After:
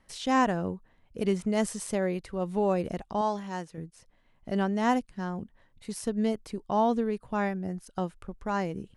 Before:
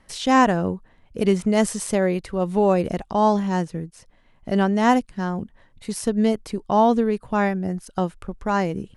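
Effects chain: 3.21–3.78 s: bass shelf 360 Hz -9.5 dB; trim -8 dB

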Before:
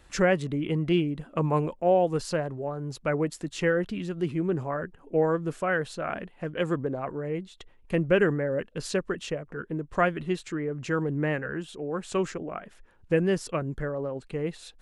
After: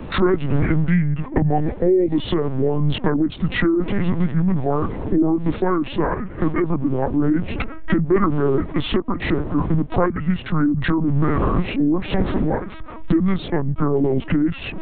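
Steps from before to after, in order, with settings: recorder AGC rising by 31 dB/s; wind noise 440 Hz -37 dBFS; formant shift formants -6 st; LPC vocoder at 8 kHz pitch kept; three bands compressed up and down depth 40%; trim +6.5 dB

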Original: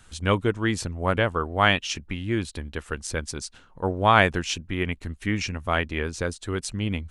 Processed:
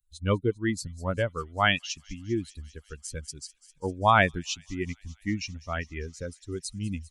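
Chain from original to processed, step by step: expander on every frequency bin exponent 2; feedback echo behind a high-pass 199 ms, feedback 78%, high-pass 5.4 kHz, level -15 dB

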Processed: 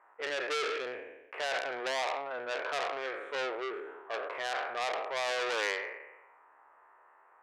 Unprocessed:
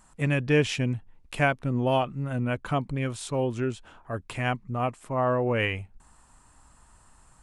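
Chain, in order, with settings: spectral sustain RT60 0.97 s; elliptic band-pass 410–2100 Hz, stop band 40 dB; peak limiter -17.5 dBFS, peak gain reduction 8 dB; transformer saturation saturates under 3 kHz

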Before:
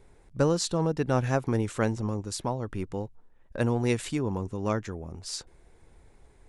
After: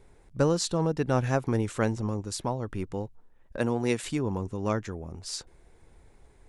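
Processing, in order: 3.57–4.04 s: high-pass 150 Hz

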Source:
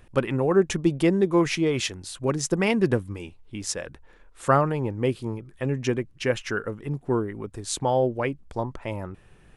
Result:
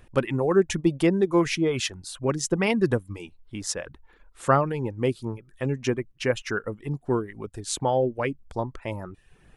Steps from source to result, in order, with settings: reverb removal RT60 0.54 s

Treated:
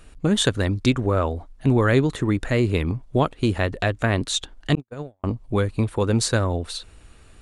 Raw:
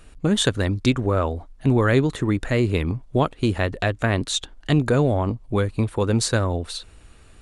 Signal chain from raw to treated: 4.75–5.24 s: gate -14 dBFS, range -60 dB

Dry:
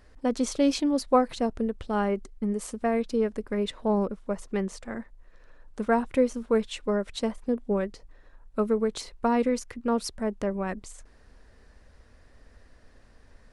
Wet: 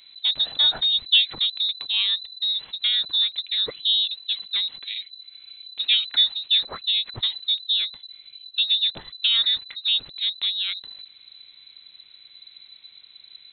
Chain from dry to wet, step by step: frequency inversion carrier 4 kHz; trim +3 dB

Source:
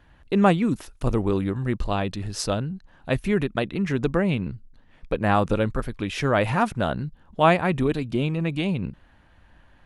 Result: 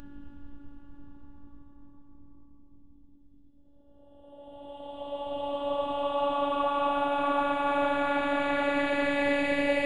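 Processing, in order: in parallel at +1 dB: gain riding 0.5 s; on the sum: mains buzz 50 Hz, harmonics 8, -31 dBFS -7 dB/octave; reverse; compression 12:1, threshold -22 dBFS, peak gain reduction 16 dB; reverse; expander -31 dBFS; Paulstretch 33×, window 0.10 s, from 7.24 s; robot voice 285 Hz

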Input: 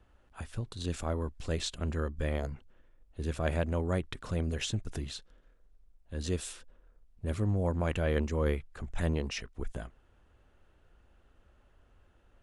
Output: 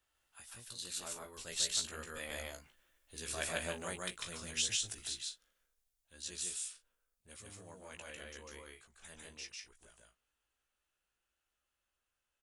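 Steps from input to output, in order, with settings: Doppler pass-by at 3.19 s, 9 m/s, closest 12 m; pre-emphasis filter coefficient 0.97; doubling 17 ms -5.5 dB; loudspeakers at several distances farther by 51 m -1 dB, 64 m -11 dB; trim +9 dB

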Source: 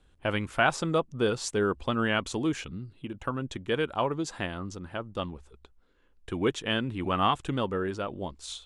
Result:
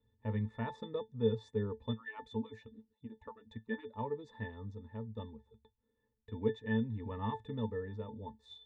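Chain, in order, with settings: 1.93–3.97 s: harmonic-percussive separation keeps percussive; pitch-class resonator A, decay 0.13 s; trim +1.5 dB

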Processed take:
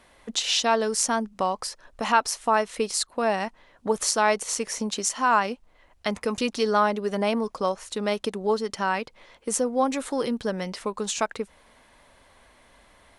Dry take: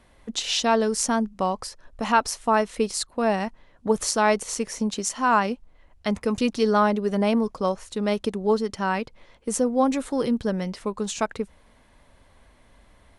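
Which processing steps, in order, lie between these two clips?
bass shelf 280 Hz -11.5 dB; in parallel at -1 dB: compression, threshold -32 dBFS, peak gain reduction 16.5 dB; on the sum: trim -1 dB

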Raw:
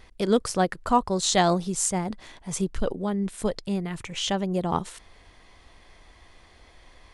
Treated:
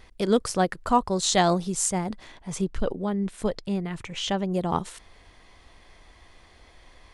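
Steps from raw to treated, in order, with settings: 2.24–4.49 s: treble shelf 6.9 kHz -8.5 dB

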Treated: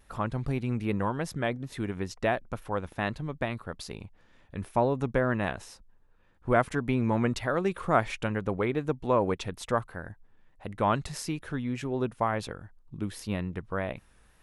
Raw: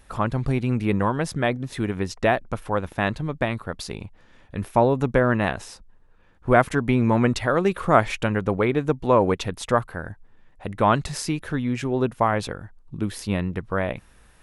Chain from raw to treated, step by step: wow and flutter 39 cents; trim -7 dB

